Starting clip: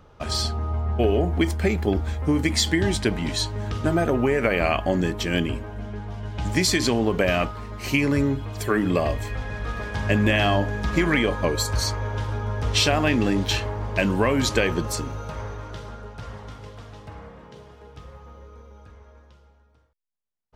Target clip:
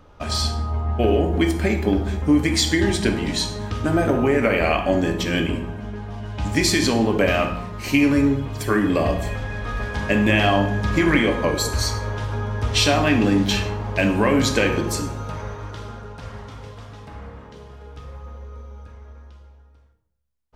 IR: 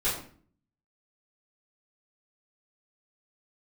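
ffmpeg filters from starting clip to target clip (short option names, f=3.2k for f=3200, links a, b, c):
-filter_complex "[0:a]asplit=2[a][b];[1:a]atrim=start_sample=2205,asetrate=29547,aresample=44100[c];[b][c]afir=irnorm=-1:irlink=0,volume=-15dB[d];[a][d]amix=inputs=2:normalize=0"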